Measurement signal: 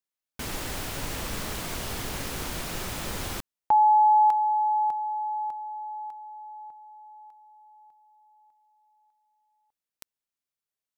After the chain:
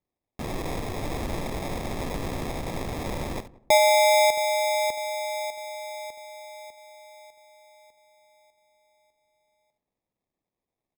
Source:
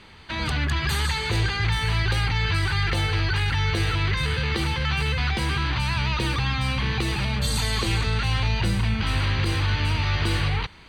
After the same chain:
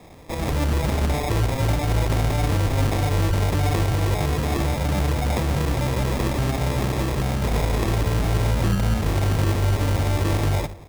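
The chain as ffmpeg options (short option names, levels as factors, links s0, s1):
-filter_complex "[0:a]asplit=2[s0][s1];[s1]aecho=0:1:71:0.237[s2];[s0][s2]amix=inputs=2:normalize=0,acrusher=samples=30:mix=1:aa=0.000001,asplit=2[s3][s4];[s4]adelay=179,lowpass=f=940:p=1,volume=0.0944,asplit=2[s5][s6];[s6]adelay=179,lowpass=f=940:p=1,volume=0.36,asplit=2[s7][s8];[s8]adelay=179,lowpass=f=940:p=1,volume=0.36[s9];[s5][s7][s9]amix=inputs=3:normalize=0[s10];[s3][s10]amix=inputs=2:normalize=0,volume=1.26"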